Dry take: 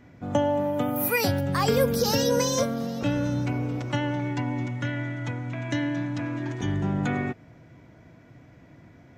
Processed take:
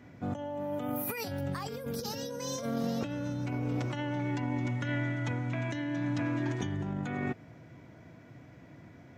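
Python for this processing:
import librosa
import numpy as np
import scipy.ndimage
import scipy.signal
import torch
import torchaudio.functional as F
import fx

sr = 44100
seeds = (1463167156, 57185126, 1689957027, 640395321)

y = scipy.signal.sosfilt(scipy.signal.butter(2, 74.0, 'highpass', fs=sr, output='sos'), x)
y = fx.over_compress(y, sr, threshold_db=-30.0, ratio=-1.0)
y = F.gain(torch.from_numpy(y), -4.0).numpy()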